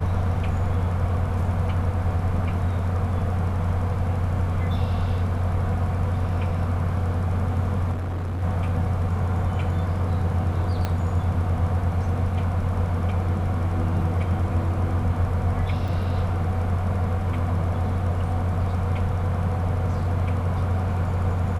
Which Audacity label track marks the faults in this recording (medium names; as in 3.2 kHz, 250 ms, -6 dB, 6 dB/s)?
7.920000	8.430000	clipped -25 dBFS
10.850000	10.850000	pop -12 dBFS
15.880000	15.880000	dropout 3.6 ms